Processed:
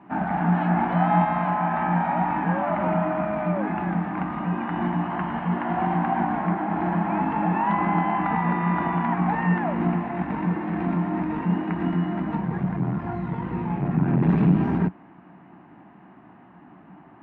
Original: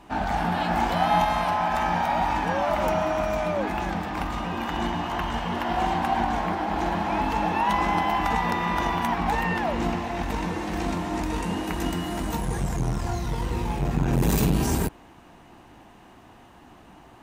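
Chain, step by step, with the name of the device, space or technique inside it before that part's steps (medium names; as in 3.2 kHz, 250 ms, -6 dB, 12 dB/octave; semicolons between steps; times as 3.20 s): bass cabinet (cabinet simulation 87–2100 Hz, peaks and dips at 92 Hz -10 dB, 180 Hz +10 dB, 290 Hz +4 dB, 490 Hz -7 dB)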